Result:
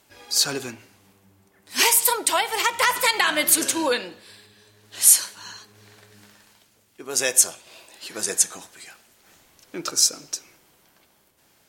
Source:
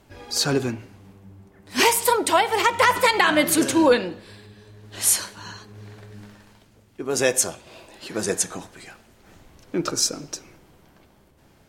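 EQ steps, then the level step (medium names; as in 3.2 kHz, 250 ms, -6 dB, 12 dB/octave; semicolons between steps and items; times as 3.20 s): tilt EQ +3 dB/octave; -4.0 dB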